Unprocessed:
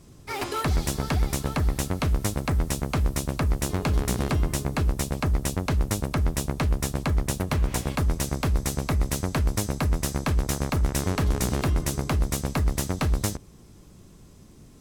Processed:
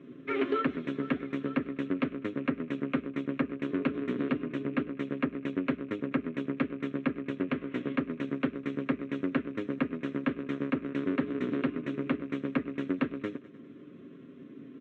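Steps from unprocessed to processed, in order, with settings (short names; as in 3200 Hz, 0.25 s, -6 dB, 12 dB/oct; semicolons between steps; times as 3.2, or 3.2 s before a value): rattling part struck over -34 dBFS, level -39 dBFS; comb 7.4 ms, depth 50%; transient shaper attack +1 dB, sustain -4 dB; fixed phaser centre 2000 Hz, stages 4; feedback echo 0.101 s, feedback 55%, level -22 dB; compressor 3:1, threshold -33 dBFS, peak gain reduction 10 dB; Chebyshev band-pass 260–3800 Hz, order 3; tilt -3 dB/oct; Doppler distortion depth 0.16 ms; gain +5.5 dB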